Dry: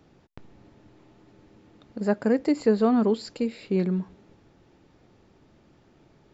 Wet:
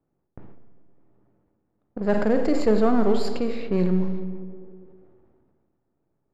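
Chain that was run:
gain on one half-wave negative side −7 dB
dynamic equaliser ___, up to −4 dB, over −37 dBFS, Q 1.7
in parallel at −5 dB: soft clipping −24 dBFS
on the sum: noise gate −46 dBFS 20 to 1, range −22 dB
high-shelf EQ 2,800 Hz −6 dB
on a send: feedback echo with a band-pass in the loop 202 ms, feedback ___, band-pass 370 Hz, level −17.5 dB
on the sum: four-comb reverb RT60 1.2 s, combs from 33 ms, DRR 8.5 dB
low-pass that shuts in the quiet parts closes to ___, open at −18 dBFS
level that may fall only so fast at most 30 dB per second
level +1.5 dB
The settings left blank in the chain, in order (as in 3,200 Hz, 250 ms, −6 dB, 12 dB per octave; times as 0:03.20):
260 Hz, 52%, 1,400 Hz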